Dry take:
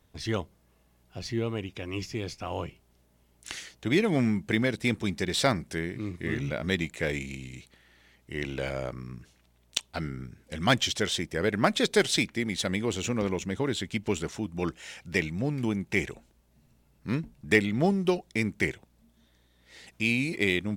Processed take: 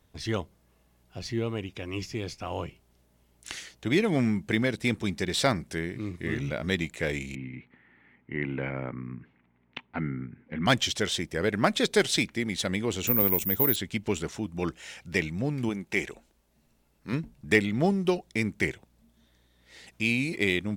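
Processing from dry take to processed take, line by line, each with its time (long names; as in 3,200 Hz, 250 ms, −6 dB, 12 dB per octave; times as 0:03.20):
0:07.35–0:10.66: loudspeaker in its box 110–2,300 Hz, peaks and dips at 140 Hz +5 dB, 250 Hz +9 dB, 610 Hz −7 dB, 910 Hz +3 dB, 2,100 Hz +5 dB
0:13.07–0:13.76: bad sample-rate conversion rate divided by 3×, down none, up zero stuff
0:15.69–0:17.13: parametric band 100 Hz −10.5 dB 1.6 octaves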